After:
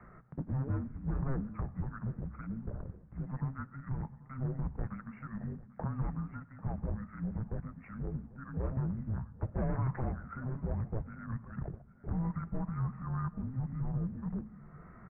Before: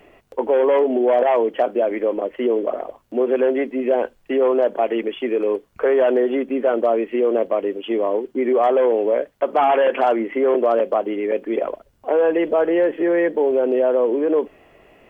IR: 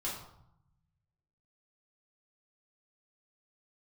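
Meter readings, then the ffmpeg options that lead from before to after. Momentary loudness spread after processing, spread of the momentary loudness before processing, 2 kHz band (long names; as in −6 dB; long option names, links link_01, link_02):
9 LU, 7 LU, −22.0 dB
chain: -filter_complex "[0:a]equalizer=frequency=650:width_type=o:width=0.3:gain=-4.5,bandreject=frequency=148.7:width_type=h:width=4,bandreject=frequency=297.4:width_type=h:width=4,bandreject=frequency=446.1:width_type=h:width=4,bandreject=frequency=594.8:width_type=h:width=4,bandreject=frequency=743.5:width_type=h:width=4,bandreject=frequency=892.2:width_type=h:width=4,acompressor=threshold=-42dB:ratio=2,afreqshift=-270,aeval=exprs='0.0794*(cos(1*acos(clip(val(0)/0.0794,-1,1)))-cos(1*PI/2))+0.00891*(cos(4*acos(clip(val(0)/0.0794,-1,1)))-cos(4*PI/2))':channel_layout=same,aecho=1:1:793|1586|2379:0.1|0.036|0.013,asplit=2[link_01][link_02];[1:a]atrim=start_sample=2205,asetrate=70560,aresample=44100,adelay=96[link_03];[link_02][link_03]afir=irnorm=-1:irlink=0,volume=-20dB[link_04];[link_01][link_04]amix=inputs=2:normalize=0,highpass=frequency=200:width_type=q:width=0.5412,highpass=frequency=200:width_type=q:width=1.307,lowpass=frequency=2000:width_type=q:width=0.5176,lowpass=frequency=2000:width_type=q:width=0.7071,lowpass=frequency=2000:width_type=q:width=1.932,afreqshift=-390"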